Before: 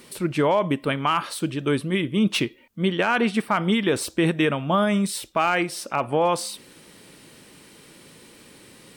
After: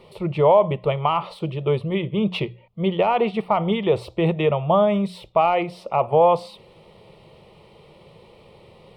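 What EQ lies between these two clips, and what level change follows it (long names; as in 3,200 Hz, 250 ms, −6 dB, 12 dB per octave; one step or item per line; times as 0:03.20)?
high-frequency loss of the air 450 metres
mains-hum notches 60/120/180 Hz
phaser with its sweep stopped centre 660 Hz, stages 4
+8.5 dB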